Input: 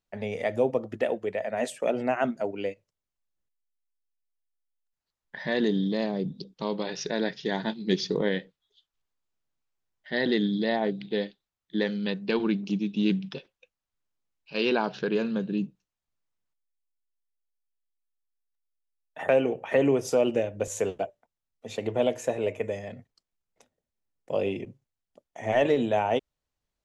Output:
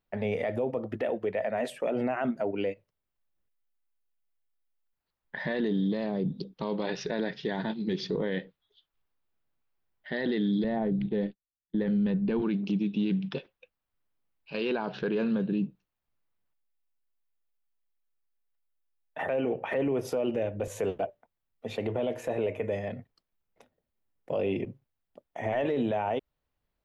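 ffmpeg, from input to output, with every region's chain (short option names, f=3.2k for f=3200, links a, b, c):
-filter_complex "[0:a]asettb=1/sr,asplit=3[a][b][c];[a]atrim=end=10.644[d];[b]atrim=start=10.64:end=12.42,asetpts=PTS-STARTPTS,afade=t=in:d=0.004:c=qsin,afade=t=out:st=1.776:d=0.004:c=qsin,agate=range=-33dB:threshold=-43dB:ratio=3:release=100:detection=peak,aemphasis=mode=reproduction:type=riaa[e];[c]atrim=start=12.416[f];[d][e]acrossfade=d=0.004:c1=hsin:c2=qsin[g];[g][f]acrossfade=d=0.004:c1=qsin:c2=hsin,acompressor=threshold=-26dB:ratio=2.5,equalizer=f=7k:t=o:w=1.2:g=-14.5,alimiter=level_in=1dB:limit=-24dB:level=0:latency=1:release=12,volume=-1dB,volume=4dB"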